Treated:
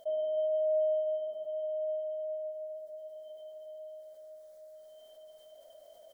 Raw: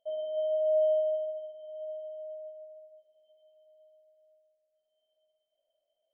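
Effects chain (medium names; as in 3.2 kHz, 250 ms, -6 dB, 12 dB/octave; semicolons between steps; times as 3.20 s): peaking EQ 2.7 kHz -13 dB 0.43 oct; on a send: delay 287 ms -9 dB; on the sum: level flattener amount 50%; trim -2 dB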